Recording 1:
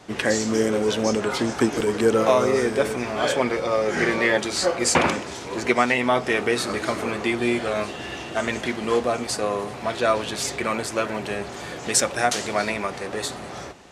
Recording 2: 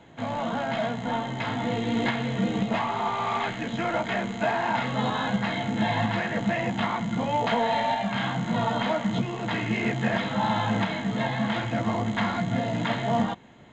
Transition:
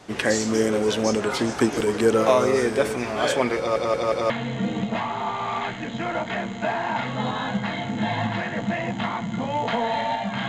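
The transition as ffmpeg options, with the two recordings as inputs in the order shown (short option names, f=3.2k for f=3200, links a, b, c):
-filter_complex "[0:a]apad=whole_dur=10.48,atrim=end=10.48,asplit=4[a][b][c][d];[a]atrim=end=3.762[e];[b]atrim=start=3.578:end=3.762[f];[c]atrim=start=3.578:end=3.762[g];[d]atrim=start=3.578:end=3.762[h];[1:a]atrim=start=2.088:end=8.27[i];[e][f]acrossfade=d=0.004:c1=hsin:c2=hsin[j];[j][g]acrossfade=d=0.004:c1=hsin:c2=hsin[k];[k][h]acrossfade=d=0.004:c1=hsin:c2=hsin[l];[l][i]acrossfade=d=0.004:c1=hsin:c2=hsin"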